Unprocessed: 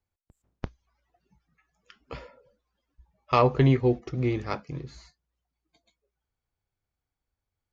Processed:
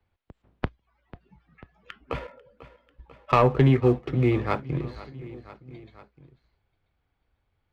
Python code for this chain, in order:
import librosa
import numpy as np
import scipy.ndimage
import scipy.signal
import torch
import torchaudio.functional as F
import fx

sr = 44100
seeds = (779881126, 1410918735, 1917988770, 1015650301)

y = scipy.signal.sosfilt(scipy.signal.butter(4, 3600.0, 'lowpass', fs=sr, output='sos'), x)
y = fx.leveller(y, sr, passes=1)
y = fx.echo_feedback(y, sr, ms=493, feedback_pct=48, wet_db=-22)
y = fx.band_squash(y, sr, depth_pct=40)
y = F.gain(torch.from_numpy(y), 2.0).numpy()